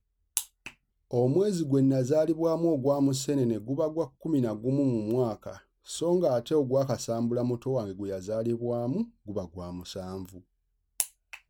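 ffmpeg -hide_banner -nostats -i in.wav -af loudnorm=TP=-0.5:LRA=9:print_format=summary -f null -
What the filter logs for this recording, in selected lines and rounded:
Input Integrated:    -29.3 LUFS
Input True Peak:      -6.0 dBTP
Input LRA:             7.6 LU
Input Threshold:     -39.9 LUFS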